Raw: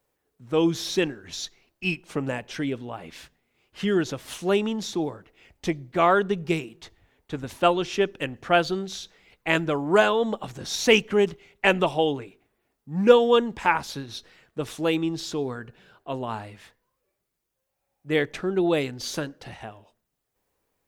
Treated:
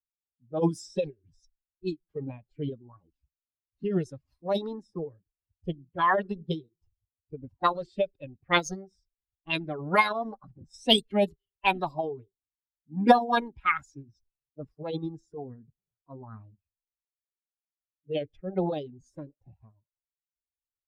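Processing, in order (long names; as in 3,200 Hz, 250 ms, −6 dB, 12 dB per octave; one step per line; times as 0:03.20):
spectral dynamics exaggerated over time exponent 2
formants moved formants +6 semitones
low-pass that shuts in the quiet parts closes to 720 Hz, open at −21.5 dBFS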